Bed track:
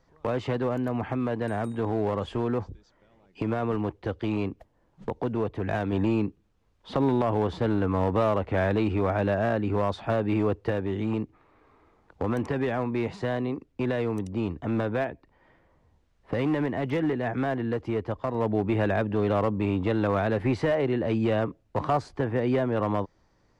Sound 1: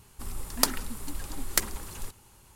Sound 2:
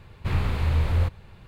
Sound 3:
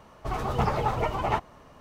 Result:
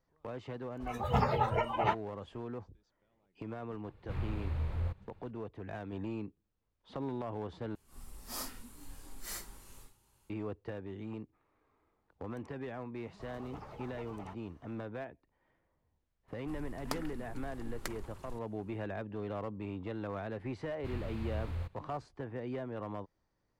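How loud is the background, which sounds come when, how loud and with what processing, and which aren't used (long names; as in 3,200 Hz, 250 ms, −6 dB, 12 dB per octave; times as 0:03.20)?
bed track −14.5 dB
0:00.55: mix in 3 −3 dB + noise reduction from a noise print of the clip's start 17 dB
0:03.84: mix in 2 −12.5 dB + high-shelf EQ 2,200 Hz −8.5 dB
0:07.75: overwrite with 1 −14 dB + random phases in long frames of 200 ms
0:12.95: mix in 3 −15.5 dB + downward compressor 1.5 to 1, threshold −41 dBFS
0:16.28: mix in 1 −8.5 dB + low-pass filter 1,700 Hz 6 dB per octave
0:20.59: mix in 2 −16 dB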